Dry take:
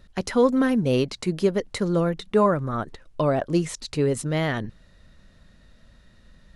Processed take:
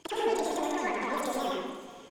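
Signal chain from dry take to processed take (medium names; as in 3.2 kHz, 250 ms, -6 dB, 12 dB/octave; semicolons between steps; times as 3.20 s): high-pass 160 Hz 12 dB/octave; treble shelf 3.3 kHz +7.5 dB; in parallel at -2 dB: level held to a coarse grid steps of 19 dB; on the sum: peak limiter -10.5 dBFS, peak gain reduction 6 dB; compression 8:1, threshold -30 dBFS, peak gain reduction 15 dB; saturation -27 dBFS, distortion -16 dB; tempo 1.8×; distance through air 130 m; on a send: delay 849 ms -19.5 dB; on the sum: plate-style reverb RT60 2.1 s, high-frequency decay 0.45×, pre-delay 110 ms, DRR -4 dB; speed mistake 45 rpm record played at 78 rpm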